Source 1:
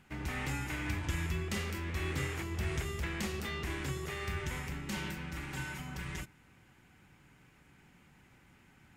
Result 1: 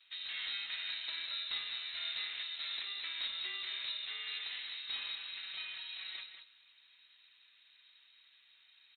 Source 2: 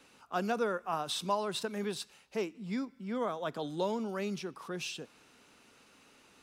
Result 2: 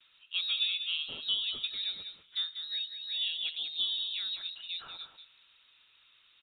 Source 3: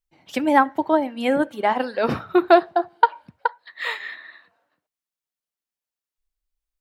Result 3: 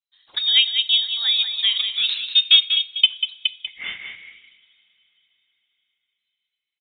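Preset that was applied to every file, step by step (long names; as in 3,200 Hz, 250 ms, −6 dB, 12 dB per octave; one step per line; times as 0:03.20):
pitch vibrato 0.37 Hz 21 cents
three-way crossover with the lows and the highs turned down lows −18 dB, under 160 Hz, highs −19 dB, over 2,100 Hz
on a send: single-tap delay 192 ms −8.5 dB
on the sum: coupled-rooms reverb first 0.4 s, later 4.7 s, from −18 dB, DRR 16.5 dB
voice inversion scrambler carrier 4,000 Hz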